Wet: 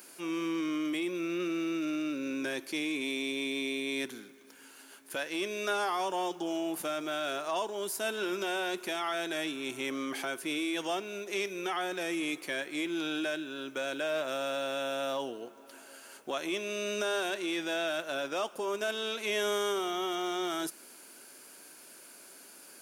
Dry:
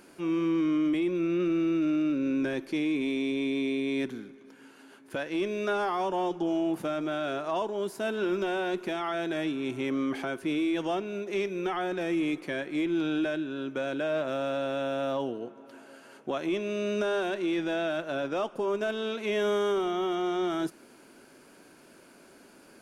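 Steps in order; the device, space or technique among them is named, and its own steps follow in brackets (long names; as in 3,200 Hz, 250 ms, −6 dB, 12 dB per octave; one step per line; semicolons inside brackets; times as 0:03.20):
turntable without a phono preamp (RIAA equalisation recording; white noise bed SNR 37 dB)
level −1.5 dB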